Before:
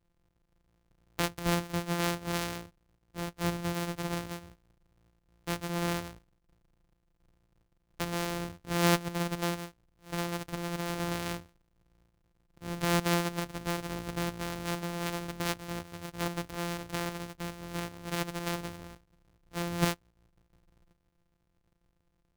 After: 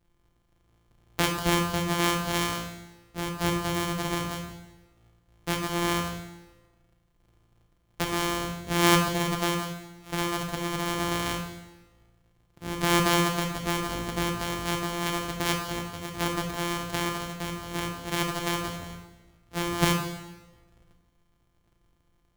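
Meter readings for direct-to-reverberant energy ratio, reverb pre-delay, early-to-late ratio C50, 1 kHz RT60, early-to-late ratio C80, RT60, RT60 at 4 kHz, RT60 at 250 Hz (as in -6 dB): 2.5 dB, 7 ms, 5.5 dB, 1.1 s, 7.5 dB, 1.1 s, 1.0 s, 1.2 s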